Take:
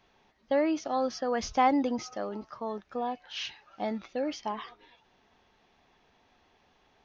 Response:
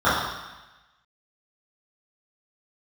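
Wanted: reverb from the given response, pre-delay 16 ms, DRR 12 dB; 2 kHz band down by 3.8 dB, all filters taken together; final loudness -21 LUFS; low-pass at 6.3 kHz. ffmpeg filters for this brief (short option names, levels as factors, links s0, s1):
-filter_complex "[0:a]lowpass=6300,equalizer=f=2000:t=o:g=-4.5,asplit=2[s0][s1];[1:a]atrim=start_sample=2205,adelay=16[s2];[s1][s2]afir=irnorm=-1:irlink=0,volume=0.0178[s3];[s0][s3]amix=inputs=2:normalize=0,volume=3.35"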